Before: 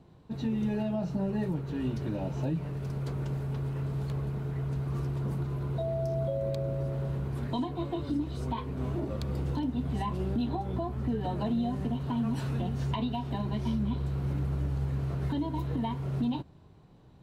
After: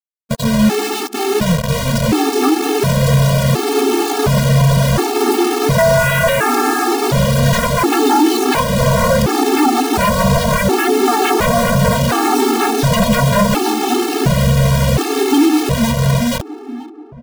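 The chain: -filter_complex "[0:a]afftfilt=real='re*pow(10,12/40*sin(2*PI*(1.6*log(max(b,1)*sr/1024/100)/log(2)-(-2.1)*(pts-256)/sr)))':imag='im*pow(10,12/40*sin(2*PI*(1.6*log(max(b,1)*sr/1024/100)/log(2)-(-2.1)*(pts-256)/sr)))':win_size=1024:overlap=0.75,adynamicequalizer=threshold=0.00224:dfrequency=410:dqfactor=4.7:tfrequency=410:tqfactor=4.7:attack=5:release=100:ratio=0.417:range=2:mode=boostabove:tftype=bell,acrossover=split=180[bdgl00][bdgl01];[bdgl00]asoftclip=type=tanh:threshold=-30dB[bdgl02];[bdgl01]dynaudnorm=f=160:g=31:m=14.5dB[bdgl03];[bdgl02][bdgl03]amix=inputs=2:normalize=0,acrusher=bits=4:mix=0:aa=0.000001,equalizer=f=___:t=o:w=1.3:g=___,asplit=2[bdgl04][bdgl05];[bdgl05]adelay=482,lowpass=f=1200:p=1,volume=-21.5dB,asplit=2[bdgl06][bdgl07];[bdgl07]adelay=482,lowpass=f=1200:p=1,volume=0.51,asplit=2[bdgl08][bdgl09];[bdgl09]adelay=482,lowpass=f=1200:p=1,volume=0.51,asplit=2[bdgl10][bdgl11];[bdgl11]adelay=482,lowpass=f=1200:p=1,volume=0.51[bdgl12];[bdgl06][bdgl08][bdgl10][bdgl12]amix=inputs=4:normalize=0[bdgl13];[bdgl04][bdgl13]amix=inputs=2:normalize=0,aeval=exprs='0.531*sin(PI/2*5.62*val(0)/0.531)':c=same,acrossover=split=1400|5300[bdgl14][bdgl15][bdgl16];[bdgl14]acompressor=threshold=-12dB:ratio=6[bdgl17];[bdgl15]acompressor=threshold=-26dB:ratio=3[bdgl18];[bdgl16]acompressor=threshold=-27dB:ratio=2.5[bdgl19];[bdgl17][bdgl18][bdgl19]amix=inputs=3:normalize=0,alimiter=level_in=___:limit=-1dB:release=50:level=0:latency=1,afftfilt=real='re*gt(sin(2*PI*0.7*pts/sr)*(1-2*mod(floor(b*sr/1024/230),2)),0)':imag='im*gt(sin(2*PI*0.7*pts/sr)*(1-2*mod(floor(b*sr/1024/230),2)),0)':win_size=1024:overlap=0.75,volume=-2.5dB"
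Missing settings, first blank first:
1800, -5, 8dB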